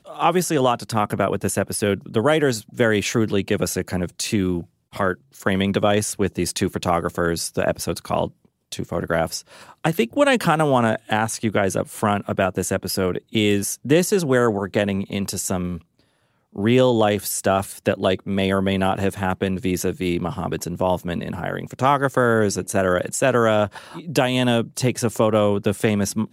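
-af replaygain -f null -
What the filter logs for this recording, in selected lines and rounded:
track_gain = +1.6 dB
track_peak = 0.495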